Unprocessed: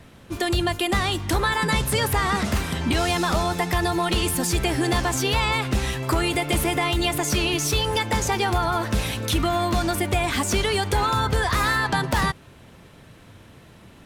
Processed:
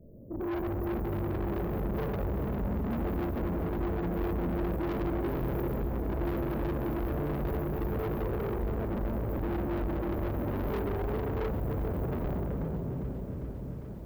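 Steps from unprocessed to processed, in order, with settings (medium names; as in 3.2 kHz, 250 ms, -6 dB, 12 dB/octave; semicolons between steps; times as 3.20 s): simulated room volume 170 m³, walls hard, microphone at 1 m; careless resampling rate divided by 4×, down filtered, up hold; brick-wall FIR band-stop 660–13000 Hz; treble shelf 8.7 kHz -11 dB; valve stage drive 25 dB, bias 0.45; bit-crushed delay 401 ms, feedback 80%, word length 9-bit, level -14 dB; trim -5.5 dB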